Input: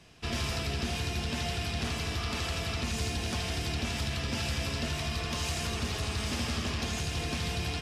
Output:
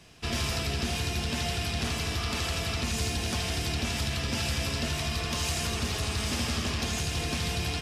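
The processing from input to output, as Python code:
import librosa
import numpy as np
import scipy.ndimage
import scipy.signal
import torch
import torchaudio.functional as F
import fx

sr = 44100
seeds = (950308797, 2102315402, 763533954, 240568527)

y = fx.high_shelf(x, sr, hz=7000.0, db=5.5)
y = F.gain(torch.from_numpy(y), 2.0).numpy()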